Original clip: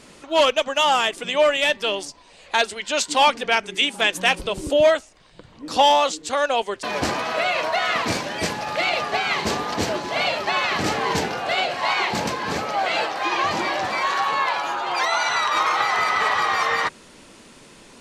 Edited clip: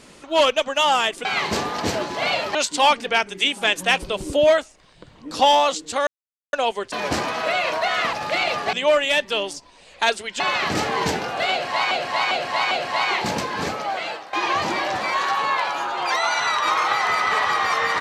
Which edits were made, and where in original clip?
1.25–2.92 swap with 9.19–10.49
6.44 insert silence 0.46 s
8.04–8.59 cut
11.6–12 loop, 4 plays
12.54–13.22 fade out, to -15 dB

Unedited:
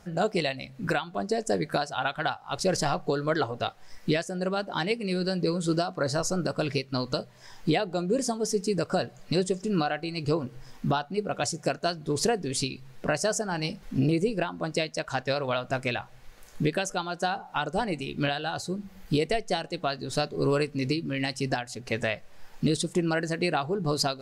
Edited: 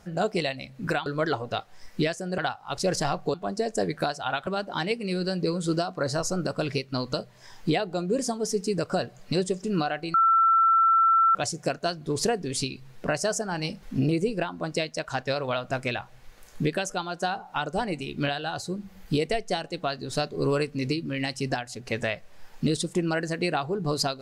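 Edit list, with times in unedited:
1.06–2.19 swap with 3.15–4.47
10.14–11.35 bleep 1340 Hz -16.5 dBFS

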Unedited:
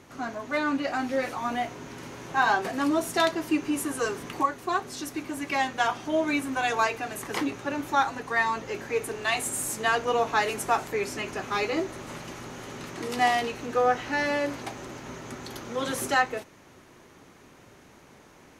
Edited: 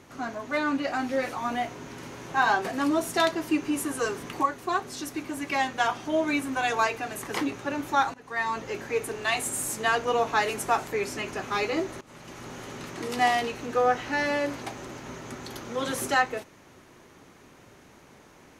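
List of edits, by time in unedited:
8.14–8.59 fade in, from -20 dB
12.01–12.51 fade in, from -18.5 dB

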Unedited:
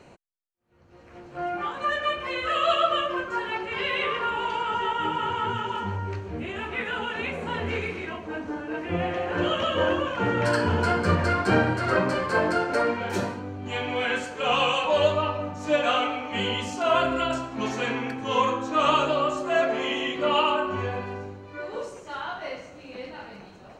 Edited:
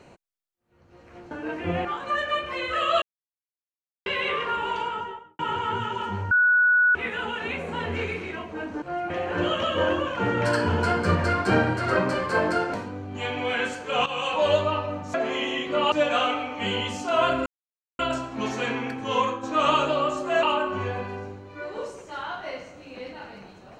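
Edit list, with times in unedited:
1.31–1.59 swap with 8.56–9.1
2.76–3.8 mute
4.5–5.13 studio fade out
6.05–6.69 bleep 1470 Hz -15.5 dBFS
12.74–13.25 cut
14.57–14.85 fade in, from -14 dB
17.19 insert silence 0.53 s
18.27–18.63 fade out equal-power, to -7 dB
19.63–20.41 move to 15.65

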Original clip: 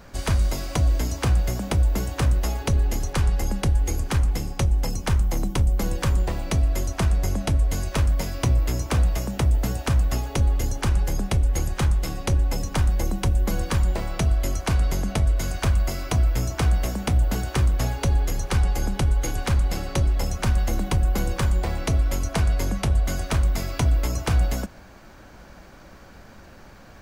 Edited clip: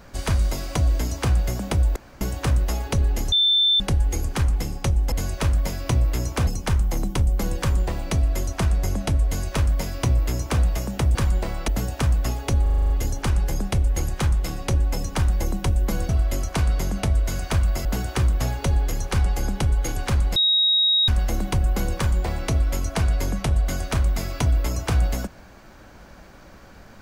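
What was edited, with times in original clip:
1.96 insert room tone 0.25 s
3.07–3.55 bleep 3550 Hz -15 dBFS
7.66–9.01 copy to 4.87
10.49 stutter 0.04 s, 8 plays
13.68–14.21 move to 9.55
15.97–17.24 cut
19.75–20.47 bleep 3790 Hz -15.5 dBFS

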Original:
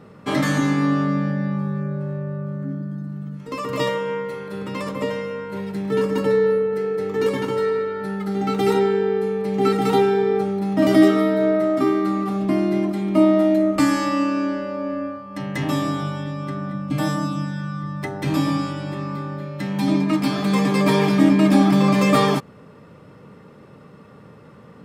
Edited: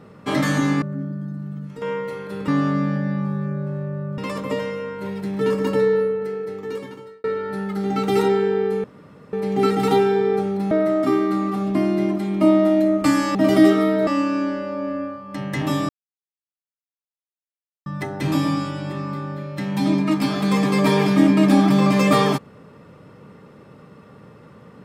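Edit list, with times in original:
0.82–2.52 move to 4.69
3.52–4.03 cut
6.34–7.75 fade out
9.35 insert room tone 0.49 s
10.73–11.45 move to 14.09
15.91–17.88 mute

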